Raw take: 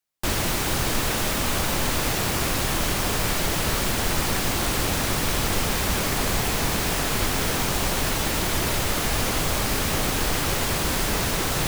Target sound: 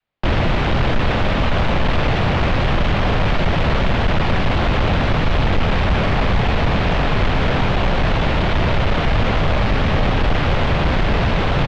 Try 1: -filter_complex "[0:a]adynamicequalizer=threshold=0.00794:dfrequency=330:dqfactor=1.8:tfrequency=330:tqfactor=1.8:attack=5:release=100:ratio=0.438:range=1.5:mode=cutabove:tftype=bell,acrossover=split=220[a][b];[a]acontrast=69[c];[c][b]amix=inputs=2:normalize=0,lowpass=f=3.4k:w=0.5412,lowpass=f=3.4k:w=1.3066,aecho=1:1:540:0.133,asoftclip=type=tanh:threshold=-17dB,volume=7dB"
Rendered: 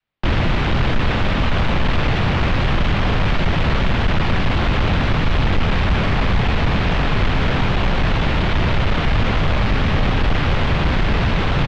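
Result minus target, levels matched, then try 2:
500 Hz band -2.5 dB
-filter_complex "[0:a]adynamicequalizer=threshold=0.00794:dfrequency=330:dqfactor=1.8:tfrequency=330:tqfactor=1.8:attack=5:release=100:ratio=0.438:range=1.5:mode=cutabove:tftype=bell,acrossover=split=220[a][b];[a]acontrast=69[c];[c][b]amix=inputs=2:normalize=0,lowpass=f=3.4k:w=0.5412,lowpass=f=3.4k:w=1.3066,equalizer=f=610:w=1.3:g=4.5,aecho=1:1:540:0.133,asoftclip=type=tanh:threshold=-17dB,volume=7dB"

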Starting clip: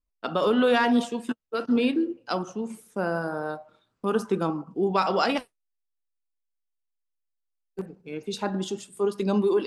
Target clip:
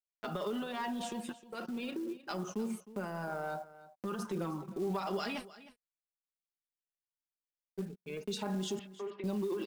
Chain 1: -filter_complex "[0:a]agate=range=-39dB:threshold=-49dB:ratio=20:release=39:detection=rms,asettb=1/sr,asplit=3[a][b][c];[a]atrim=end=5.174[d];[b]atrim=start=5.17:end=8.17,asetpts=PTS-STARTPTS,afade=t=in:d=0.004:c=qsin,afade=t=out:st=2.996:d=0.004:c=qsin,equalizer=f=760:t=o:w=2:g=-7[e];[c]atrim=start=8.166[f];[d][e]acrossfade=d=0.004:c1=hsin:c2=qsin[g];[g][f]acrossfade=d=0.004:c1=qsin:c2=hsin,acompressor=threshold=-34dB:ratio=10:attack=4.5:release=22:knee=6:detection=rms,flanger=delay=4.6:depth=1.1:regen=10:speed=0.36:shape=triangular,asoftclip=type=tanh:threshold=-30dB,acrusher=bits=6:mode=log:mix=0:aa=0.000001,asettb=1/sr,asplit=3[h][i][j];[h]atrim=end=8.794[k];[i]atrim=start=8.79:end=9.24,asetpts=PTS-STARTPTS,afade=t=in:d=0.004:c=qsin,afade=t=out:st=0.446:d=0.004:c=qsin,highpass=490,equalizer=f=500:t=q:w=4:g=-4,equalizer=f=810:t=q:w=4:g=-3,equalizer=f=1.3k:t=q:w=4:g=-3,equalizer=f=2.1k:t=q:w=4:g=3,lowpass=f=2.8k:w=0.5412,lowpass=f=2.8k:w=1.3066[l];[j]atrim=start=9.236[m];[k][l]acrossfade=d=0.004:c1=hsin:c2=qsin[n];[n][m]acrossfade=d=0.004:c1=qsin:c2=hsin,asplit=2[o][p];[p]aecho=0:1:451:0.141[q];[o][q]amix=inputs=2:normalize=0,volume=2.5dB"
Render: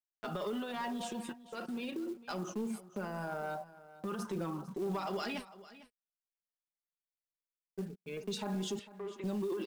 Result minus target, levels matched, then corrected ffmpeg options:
echo 0.141 s late; soft clip: distortion +13 dB
-filter_complex "[0:a]agate=range=-39dB:threshold=-49dB:ratio=20:release=39:detection=rms,asettb=1/sr,asplit=3[a][b][c];[a]atrim=end=5.174[d];[b]atrim=start=5.17:end=8.17,asetpts=PTS-STARTPTS,afade=t=in:d=0.004:c=qsin,afade=t=out:st=2.996:d=0.004:c=qsin,equalizer=f=760:t=o:w=2:g=-7[e];[c]atrim=start=8.166[f];[d][e]acrossfade=d=0.004:c1=hsin:c2=qsin[g];[g][f]acrossfade=d=0.004:c1=qsin:c2=hsin,acompressor=threshold=-34dB:ratio=10:attack=4.5:release=22:knee=6:detection=rms,flanger=delay=4.6:depth=1.1:regen=10:speed=0.36:shape=triangular,asoftclip=type=tanh:threshold=-22.5dB,acrusher=bits=6:mode=log:mix=0:aa=0.000001,asettb=1/sr,asplit=3[h][i][j];[h]atrim=end=8.794[k];[i]atrim=start=8.79:end=9.24,asetpts=PTS-STARTPTS,afade=t=in:d=0.004:c=qsin,afade=t=out:st=0.446:d=0.004:c=qsin,highpass=490,equalizer=f=500:t=q:w=4:g=-4,equalizer=f=810:t=q:w=4:g=-3,equalizer=f=1.3k:t=q:w=4:g=-3,equalizer=f=2.1k:t=q:w=4:g=3,lowpass=f=2.8k:w=0.5412,lowpass=f=2.8k:w=1.3066[l];[j]atrim=start=9.236[m];[k][l]acrossfade=d=0.004:c1=hsin:c2=qsin[n];[n][m]acrossfade=d=0.004:c1=qsin:c2=hsin,asplit=2[o][p];[p]aecho=0:1:310:0.141[q];[o][q]amix=inputs=2:normalize=0,volume=2.5dB"

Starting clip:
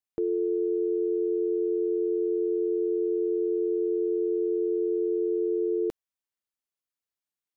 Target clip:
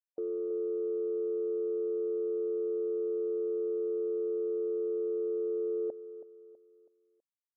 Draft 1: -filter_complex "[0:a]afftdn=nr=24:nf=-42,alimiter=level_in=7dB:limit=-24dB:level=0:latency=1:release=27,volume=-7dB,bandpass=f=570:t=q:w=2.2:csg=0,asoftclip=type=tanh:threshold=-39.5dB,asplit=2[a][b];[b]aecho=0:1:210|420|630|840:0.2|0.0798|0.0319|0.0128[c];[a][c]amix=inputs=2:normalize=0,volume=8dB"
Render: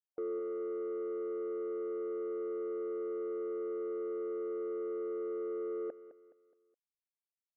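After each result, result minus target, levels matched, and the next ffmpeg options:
soft clip: distortion +15 dB; echo 0.115 s early
-filter_complex "[0:a]afftdn=nr=24:nf=-42,alimiter=level_in=7dB:limit=-24dB:level=0:latency=1:release=27,volume=-7dB,bandpass=f=570:t=q:w=2.2:csg=0,asoftclip=type=tanh:threshold=-30.5dB,asplit=2[a][b];[b]aecho=0:1:210|420|630|840:0.2|0.0798|0.0319|0.0128[c];[a][c]amix=inputs=2:normalize=0,volume=8dB"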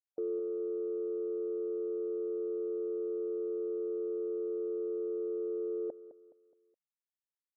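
echo 0.115 s early
-filter_complex "[0:a]afftdn=nr=24:nf=-42,alimiter=level_in=7dB:limit=-24dB:level=0:latency=1:release=27,volume=-7dB,bandpass=f=570:t=q:w=2.2:csg=0,asoftclip=type=tanh:threshold=-30.5dB,asplit=2[a][b];[b]aecho=0:1:325|650|975|1300:0.2|0.0798|0.0319|0.0128[c];[a][c]amix=inputs=2:normalize=0,volume=8dB"

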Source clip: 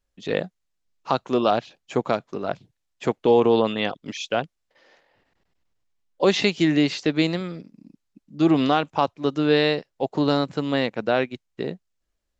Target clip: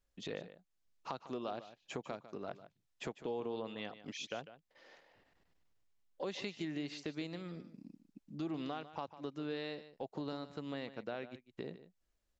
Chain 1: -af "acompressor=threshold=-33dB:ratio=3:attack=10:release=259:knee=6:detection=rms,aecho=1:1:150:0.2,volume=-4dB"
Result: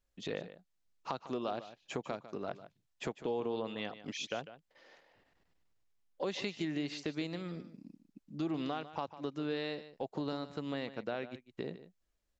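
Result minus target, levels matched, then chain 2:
compressor: peak gain reduction -4 dB
-af "acompressor=threshold=-39dB:ratio=3:attack=10:release=259:knee=6:detection=rms,aecho=1:1:150:0.2,volume=-4dB"

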